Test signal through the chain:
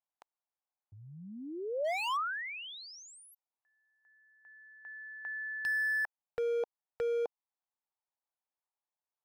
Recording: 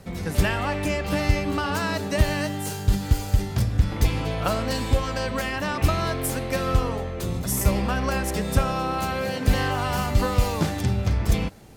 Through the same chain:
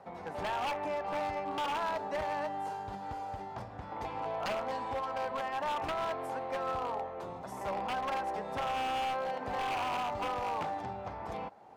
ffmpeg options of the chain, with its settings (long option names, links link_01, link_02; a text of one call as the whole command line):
ffmpeg -i in.wav -filter_complex "[0:a]asplit=2[link_01][link_02];[link_02]acompressor=threshold=-36dB:ratio=5,volume=-0.5dB[link_03];[link_01][link_03]amix=inputs=2:normalize=0,bandpass=frequency=840:width_type=q:width=3:csg=0,aeval=exprs='0.0376*(abs(mod(val(0)/0.0376+3,4)-2)-1)':channel_layout=same" out.wav